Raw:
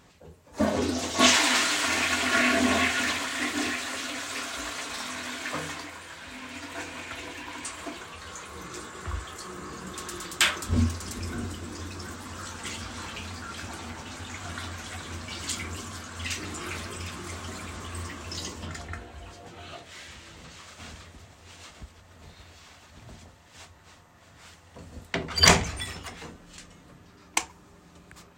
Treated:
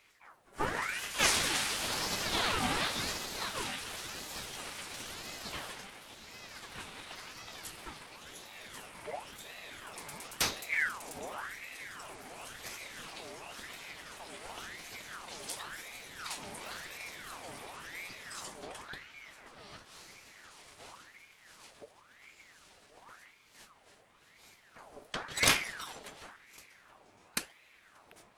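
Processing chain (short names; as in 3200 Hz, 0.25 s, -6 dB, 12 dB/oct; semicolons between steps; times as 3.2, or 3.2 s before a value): formant shift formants +4 st; ring modulator with a swept carrier 1400 Hz, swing 65%, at 0.94 Hz; gain -5.5 dB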